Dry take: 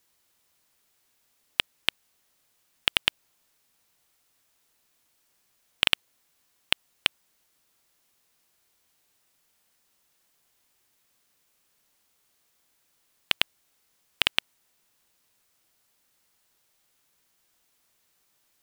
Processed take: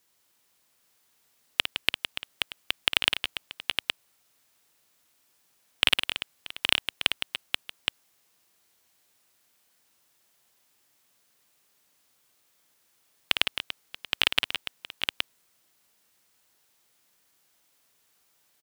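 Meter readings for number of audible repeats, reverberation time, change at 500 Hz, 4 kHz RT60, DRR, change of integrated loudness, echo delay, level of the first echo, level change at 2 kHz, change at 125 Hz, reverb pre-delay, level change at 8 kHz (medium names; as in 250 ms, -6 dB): 5, no reverb, +2.0 dB, no reverb, no reverb, -1.0 dB, 55 ms, -9.0 dB, +2.0 dB, +0.5 dB, no reverb, +2.0 dB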